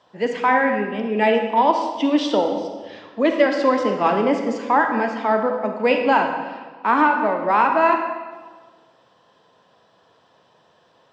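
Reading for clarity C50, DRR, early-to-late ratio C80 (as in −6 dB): 5.0 dB, 4.0 dB, 6.5 dB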